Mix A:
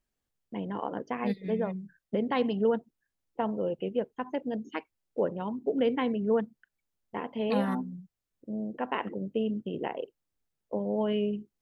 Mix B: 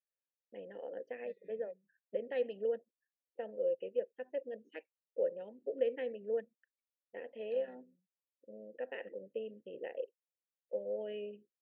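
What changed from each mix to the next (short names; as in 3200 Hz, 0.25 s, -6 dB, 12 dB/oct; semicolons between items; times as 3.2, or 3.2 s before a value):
second voice -11.5 dB; master: add vowel filter e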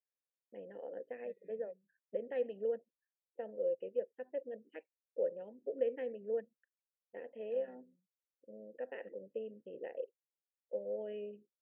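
master: add air absorption 450 m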